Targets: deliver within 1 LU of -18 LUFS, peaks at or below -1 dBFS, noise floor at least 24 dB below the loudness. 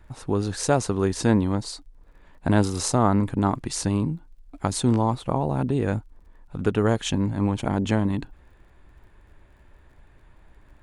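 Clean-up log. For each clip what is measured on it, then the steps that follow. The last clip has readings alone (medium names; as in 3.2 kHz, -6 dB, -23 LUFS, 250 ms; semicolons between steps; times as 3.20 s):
tick rate 28 per s; loudness -24.5 LUFS; peak level -4.5 dBFS; loudness target -18.0 LUFS
-> de-click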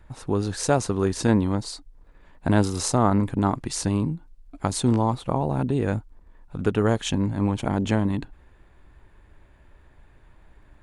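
tick rate 0.092 per s; loudness -24.5 LUFS; peak level -4.5 dBFS; loudness target -18.0 LUFS
-> trim +6.5 dB; peak limiter -1 dBFS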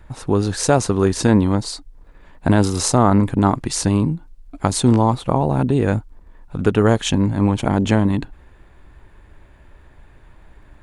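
loudness -18.0 LUFS; peak level -1.0 dBFS; noise floor -49 dBFS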